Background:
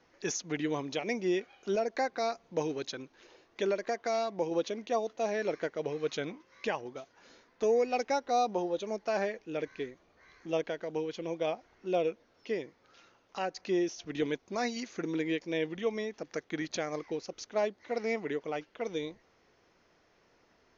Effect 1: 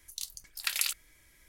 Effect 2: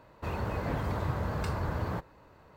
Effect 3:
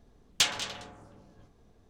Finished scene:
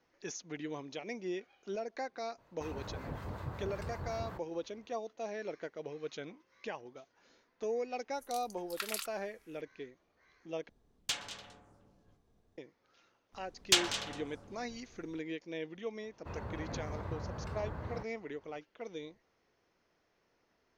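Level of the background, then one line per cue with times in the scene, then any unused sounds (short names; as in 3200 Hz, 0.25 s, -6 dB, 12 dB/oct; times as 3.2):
background -8.5 dB
2.38 add 2 -8 dB + harmonic tremolo 5.4 Hz, depth 50%, crossover 890 Hz
8.13 add 1 -10 dB + bell 1200 Hz +12 dB
10.69 replace with 3 -10.5 dB
13.32 add 3 -1 dB, fades 0.02 s
16.03 add 2 -9 dB + LPF 2800 Hz 6 dB/oct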